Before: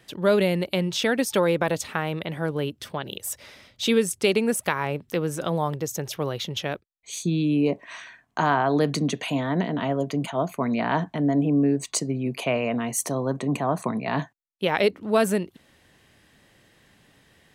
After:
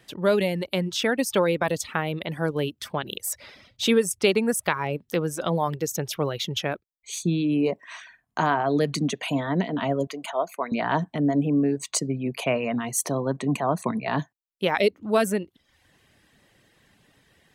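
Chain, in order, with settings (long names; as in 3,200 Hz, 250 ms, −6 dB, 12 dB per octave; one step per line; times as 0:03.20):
reverb reduction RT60 0.65 s
0:10.07–0:10.72: Chebyshev high-pass filter 590 Hz, order 2
in parallel at 0 dB: speech leveller within 4 dB 2 s
on the sum: level −5.5 dB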